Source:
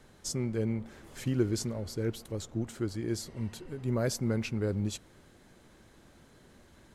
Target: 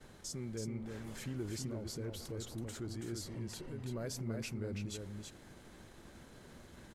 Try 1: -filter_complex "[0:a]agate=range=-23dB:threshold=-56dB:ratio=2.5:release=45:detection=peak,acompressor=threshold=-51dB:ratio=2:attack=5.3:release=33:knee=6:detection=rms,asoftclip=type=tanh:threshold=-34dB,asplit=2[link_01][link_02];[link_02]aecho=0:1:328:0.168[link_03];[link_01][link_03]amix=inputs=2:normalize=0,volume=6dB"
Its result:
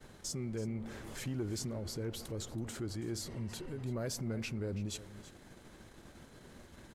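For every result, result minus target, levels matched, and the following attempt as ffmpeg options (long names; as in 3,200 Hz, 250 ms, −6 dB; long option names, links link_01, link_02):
echo-to-direct −10.5 dB; downward compressor: peak gain reduction −4 dB
-filter_complex "[0:a]agate=range=-23dB:threshold=-56dB:ratio=2.5:release=45:detection=peak,acompressor=threshold=-51dB:ratio=2:attack=5.3:release=33:knee=6:detection=rms,asoftclip=type=tanh:threshold=-34dB,asplit=2[link_01][link_02];[link_02]aecho=0:1:328:0.562[link_03];[link_01][link_03]amix=inputs=2:normalize=0,volume=6dB"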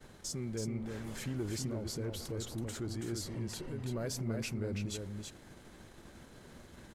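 downward compressor: peak gain reduction −4 dB
-filter_complex "[0:a]agate=range=-23dB:threshold=-56dB:ratio=2.5:release=45:detection=peak,acompressor=threshold=-59dB:ratio=2:attack=5.3:release=33:knee=6:detection=rms,asoftclip=type=tanh:threshold=-34dB,asplit=2[link_01][link_02];[link_02]aecho=0:1:328:0.562[link_03];[link_01][link_03]amix=inputs=2:normalize=0,volume=6dB"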